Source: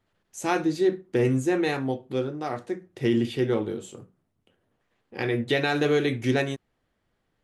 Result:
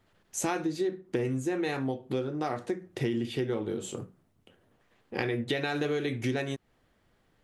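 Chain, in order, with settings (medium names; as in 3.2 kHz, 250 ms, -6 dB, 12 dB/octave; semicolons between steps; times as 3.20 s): compression 6:1, threshold -34 dBFS, peak gain reduction 15.5 dB; trim +6 dB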